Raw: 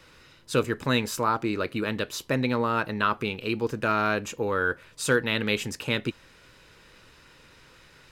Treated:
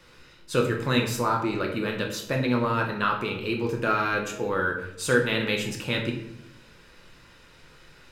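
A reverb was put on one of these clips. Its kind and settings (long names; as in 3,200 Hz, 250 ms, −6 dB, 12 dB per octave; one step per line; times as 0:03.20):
rectangular room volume 190 cubic metres, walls mixed, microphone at 0.88 metres
level −2 dB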